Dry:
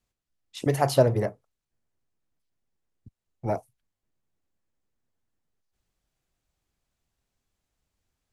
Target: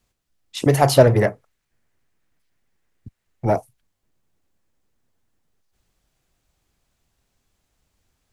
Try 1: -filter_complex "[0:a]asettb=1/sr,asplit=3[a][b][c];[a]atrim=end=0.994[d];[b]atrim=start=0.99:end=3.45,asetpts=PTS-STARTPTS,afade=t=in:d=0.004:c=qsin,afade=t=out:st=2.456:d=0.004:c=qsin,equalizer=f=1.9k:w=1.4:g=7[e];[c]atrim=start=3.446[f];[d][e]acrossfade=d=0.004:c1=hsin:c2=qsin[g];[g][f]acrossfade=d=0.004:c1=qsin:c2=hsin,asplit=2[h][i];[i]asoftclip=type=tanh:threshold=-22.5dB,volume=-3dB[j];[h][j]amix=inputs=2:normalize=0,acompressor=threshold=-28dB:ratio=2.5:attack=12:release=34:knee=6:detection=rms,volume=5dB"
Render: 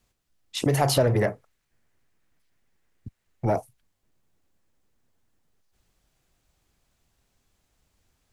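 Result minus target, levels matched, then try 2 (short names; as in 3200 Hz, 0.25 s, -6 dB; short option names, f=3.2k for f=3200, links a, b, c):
compressor: peak gain reduction +10.5 dB
-filter_complex "[0:a]asettb=1/sr,asplit=3[a][b][c];[a]atrim=end=0.994[d];[b]atrim=start=0.99:end=3.45,asetpts=PTS-STARTPTS,afade=t=in:d=0.004:c=qsin,afade=t=out:st=2.456:d=0.004:c=qsin,equalizer=f=1.9k:w=1.4:g=7[e];[c]atrim=start=3.446[f];[d][e]acrossfade=d=0.004:c1=hsin:c2=qsin[g];[g][f]acrossfade=d=0.004:c1=qsin:c2=hsin,asplit=2[h][i];[i]asoftclip=type=tanh:threshold=-22.5dB,volume=-3dB[j];[h][j]amix=inputs=2:normalize=0,volume=5dB"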